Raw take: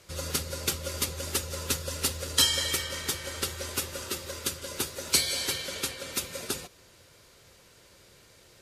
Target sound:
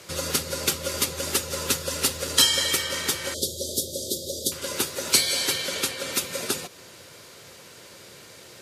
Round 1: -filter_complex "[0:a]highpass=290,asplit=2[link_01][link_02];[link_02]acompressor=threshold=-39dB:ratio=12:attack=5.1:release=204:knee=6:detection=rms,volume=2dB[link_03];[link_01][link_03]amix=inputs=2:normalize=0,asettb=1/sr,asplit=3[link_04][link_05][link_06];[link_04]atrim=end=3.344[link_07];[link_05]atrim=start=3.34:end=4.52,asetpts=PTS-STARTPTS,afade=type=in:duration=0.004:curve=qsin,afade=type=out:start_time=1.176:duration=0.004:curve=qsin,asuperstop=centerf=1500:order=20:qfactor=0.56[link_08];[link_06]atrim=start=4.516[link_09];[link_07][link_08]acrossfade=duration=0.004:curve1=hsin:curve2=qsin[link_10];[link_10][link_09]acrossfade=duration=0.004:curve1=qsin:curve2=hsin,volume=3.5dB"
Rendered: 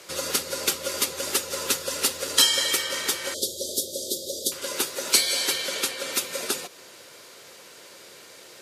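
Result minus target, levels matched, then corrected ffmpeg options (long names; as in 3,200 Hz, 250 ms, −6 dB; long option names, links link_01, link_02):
125 Hz band −11.0 dB
-filter_complex "[0:a]highpass=130,asplit=2[link_01][link_02];[link_02]acompressor=threshold=-39dB:ratio=12:attack=5.1:release=204:knee=6:detection=rms,volume=2dB[link_03];[link_01][link_03]amix=inputs=2:normalize=0,asettb=1/sr,asplit=3[link_04][link_05][link_06];[link_04]atrim=end=3.344[link_07];[link_05]atrim=start=3.34:end=4.52,asetpts=PTS-STARTPTS,afade=type=in:duration=0.004:curve=qsin,afade=type=out:start_time=1.176:duration=0.004:curve=qsin,asuperstop=centerf=1500:order=20:qfactor=0.56[link_08];[link_06]atrim=start=4.516[link_09];[link_07][link_08]acrossfade=duration=0.004:curve1=hsin:curve2=qsin[link_10];[link_10][link_09]acrossfade=duration=0.004:curve1=qsin:curve2=hsin,volume=3.5dB"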